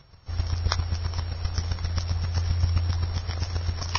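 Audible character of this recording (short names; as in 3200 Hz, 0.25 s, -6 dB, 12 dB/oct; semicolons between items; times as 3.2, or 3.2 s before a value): a buzz of ramps at a fixed pitch in blocks of 8 samples; chopped level 7.6 Hz, depth 60%, duty 10%; Vorbis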